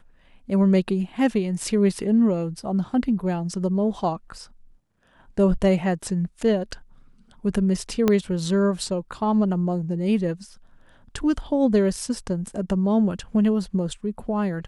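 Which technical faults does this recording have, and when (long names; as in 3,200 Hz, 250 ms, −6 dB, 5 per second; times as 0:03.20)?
0:08.08: click −7 dBFS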